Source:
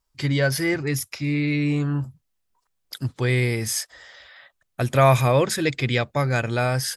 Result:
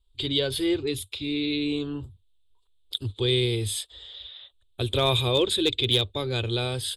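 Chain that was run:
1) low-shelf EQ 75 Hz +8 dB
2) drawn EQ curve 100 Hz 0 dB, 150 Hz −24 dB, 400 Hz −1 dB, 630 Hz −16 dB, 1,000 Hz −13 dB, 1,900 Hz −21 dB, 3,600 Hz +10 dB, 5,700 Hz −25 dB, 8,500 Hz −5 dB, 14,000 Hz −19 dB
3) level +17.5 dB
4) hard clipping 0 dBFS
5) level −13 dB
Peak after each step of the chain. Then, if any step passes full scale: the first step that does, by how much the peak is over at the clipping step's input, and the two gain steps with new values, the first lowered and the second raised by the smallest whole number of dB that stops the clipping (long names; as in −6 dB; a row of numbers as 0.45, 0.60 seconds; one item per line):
−5.5, −10.0, +7.5, 0.0, −13.0 dBFS
step 3, 7.5 dB
step 3 +9.5 dB, step 5 −5 dB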